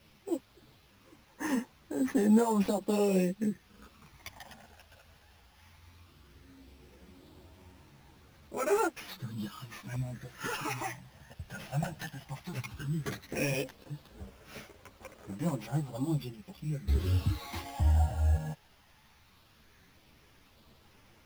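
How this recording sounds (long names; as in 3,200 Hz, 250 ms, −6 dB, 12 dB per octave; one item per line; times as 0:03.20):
a quantiser's noise floor 10 bits, dither triangular
phaser sweep stages 12, 0.15 Hz, lowest notch 360–3,600 Hz
aliases and images of a low sample rate 8,100 Hz, jitter 0%
a shimmering, thickened sound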